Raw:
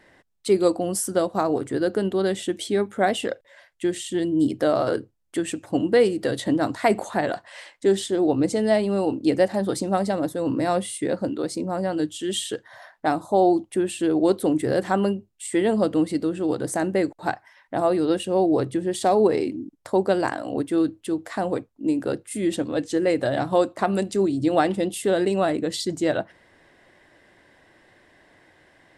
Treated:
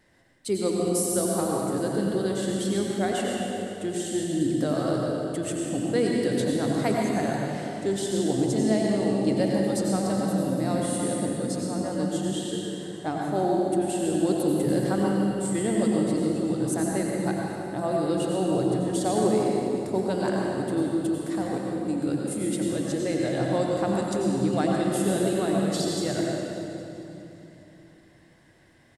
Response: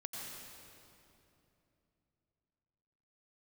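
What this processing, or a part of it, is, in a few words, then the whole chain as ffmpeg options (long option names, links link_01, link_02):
stairwell: -filter_complex "[0:a]asettb=1/sr,asplit=3[link_01][link_02][link_03];[link_01]atrim=end=12.214[link_04];[link_02]atrim=start=12.21:end=13.17,asetpts=PTS-STARTPTS,afade=type=in:duration=0.004:curve=qsin,afade=type=out:start_time=0.956:duration=0.004:curve=qsin,lowpass=frequency=2900:poles=1[link_05];[link_03]atrim=start=13.166[link_06];[link_04][link_05]acrossfade=duration=0.004:curve1=hsin:curve2=qsin[link_07];[link_07][link_06]acrossfade=duration=0.004:curve1=qsin:curve2=hsin,bass=frequency=250:gain=8,treble=frequency=4000:gain=8,aecho=1:1:406|812|1218|1624:0.126|0.0579|0.0266|0.0123[link_08];[1:a]atrim=start_sample=2205[link_09];[link_08][link_09]afir=irnorm=-1:irlink=0,volume=-4.5dB"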